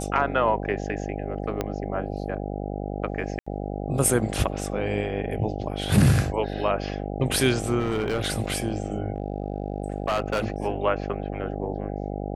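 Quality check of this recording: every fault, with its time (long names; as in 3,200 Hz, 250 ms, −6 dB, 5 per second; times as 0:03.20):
mains buzz 50 Hz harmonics 16 −31 dBFS
0:01.61: click −12 dBFS
0:03.39–0:03.46: drop-out 75 ms
0:07.80–0:08.22: clipping −20.5 dBFS
0:09.12–0:10.56: clipping −20 dBFS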